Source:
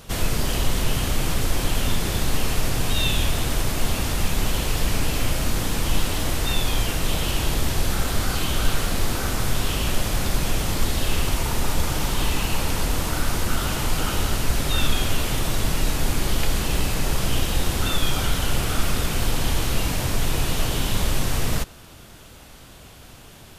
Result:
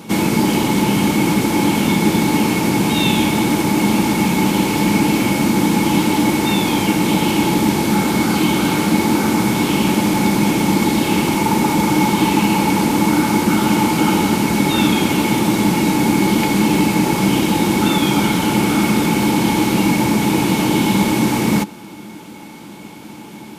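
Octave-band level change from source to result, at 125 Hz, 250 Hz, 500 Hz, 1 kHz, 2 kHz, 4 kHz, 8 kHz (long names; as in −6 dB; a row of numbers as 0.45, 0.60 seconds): +5.0, +17.5, +10.0, +12.0, +8.0, +4.0, +3.5 decibels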